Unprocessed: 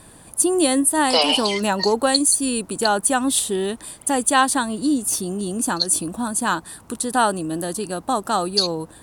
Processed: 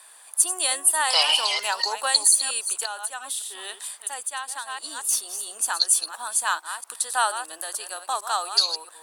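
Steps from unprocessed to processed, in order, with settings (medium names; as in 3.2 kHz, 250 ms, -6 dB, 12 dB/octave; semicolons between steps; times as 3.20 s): chunks repeated in reverse 228 ms, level -10 dB; Bessel high-pass 1.1 kHz, order 4; 2.81–5.09 s: compression 16:1, threshold -27 dBFS, peak gain reduction 14.5 dB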